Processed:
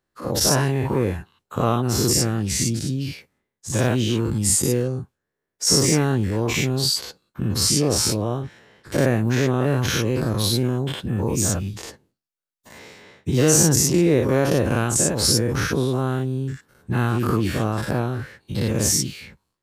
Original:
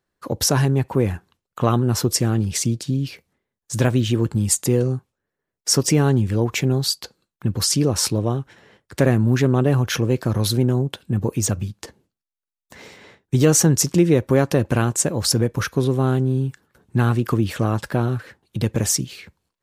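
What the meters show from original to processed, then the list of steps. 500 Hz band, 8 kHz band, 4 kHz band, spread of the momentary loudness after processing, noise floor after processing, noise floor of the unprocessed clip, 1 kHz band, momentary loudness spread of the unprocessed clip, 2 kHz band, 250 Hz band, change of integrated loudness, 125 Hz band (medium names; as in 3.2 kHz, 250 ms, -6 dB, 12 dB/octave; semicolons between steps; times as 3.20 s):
-0.5 dB, +2.0 dB, +2.0 dB, 13 LU, -82 dBFS, -85 dBFS, 0.0 dB, 11 LU, +1.5 dB, -1.5 dB, -0.5 dB, -2.5 dB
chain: every event in the spectrogram widened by 120 ms; trim -5.5 dB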